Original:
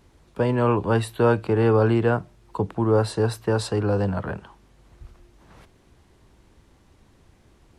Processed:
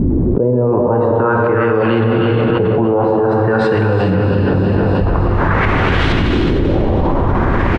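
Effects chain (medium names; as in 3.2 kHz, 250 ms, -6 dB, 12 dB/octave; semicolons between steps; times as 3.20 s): reverse; upward compressor, threshold -27 dBFS; reverse; LFO low-pass saw up 0.49 Hz 250–3700 Hz; feedback delay 315 ms, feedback 54%, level -11 dB; gated-style reverb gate 490 ms flat, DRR 0.5 dB; level flattener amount 100%; trim -1.5 dB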